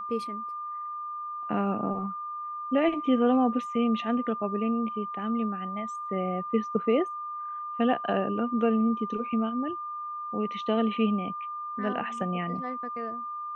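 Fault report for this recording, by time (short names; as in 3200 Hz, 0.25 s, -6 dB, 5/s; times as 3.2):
tone 1200 Hz -33 dBFS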